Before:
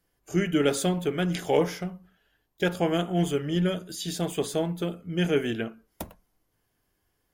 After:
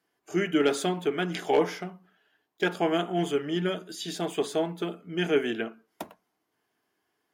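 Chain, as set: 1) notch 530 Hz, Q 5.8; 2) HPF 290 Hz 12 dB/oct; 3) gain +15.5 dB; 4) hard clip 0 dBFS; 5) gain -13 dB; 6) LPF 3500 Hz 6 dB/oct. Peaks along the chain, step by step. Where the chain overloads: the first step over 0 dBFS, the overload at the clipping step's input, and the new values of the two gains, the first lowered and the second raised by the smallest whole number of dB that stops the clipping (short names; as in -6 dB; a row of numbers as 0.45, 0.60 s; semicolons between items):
-11.0, -11.5, +4.0, 0.0, -13.0, -13.0 dBFS; step 3, 4.0 dB; step 3 +11.5 dB, step 5 -9 dB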